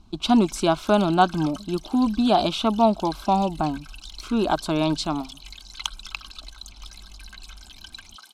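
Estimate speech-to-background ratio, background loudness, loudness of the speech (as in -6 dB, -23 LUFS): 19.0 dB, -42.0 LUFS, -23.0 LUFS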